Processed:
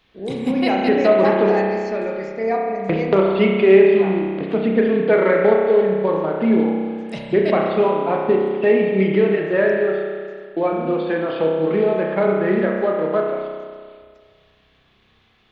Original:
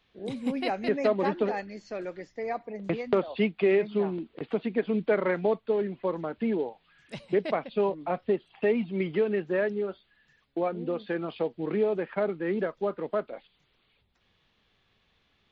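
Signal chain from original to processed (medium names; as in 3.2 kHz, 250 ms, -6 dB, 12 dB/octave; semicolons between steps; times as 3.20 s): spring tank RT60 1.9 s, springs 31 ms, chirp 40 ms, DRR -1 dB; trim +7.5 dB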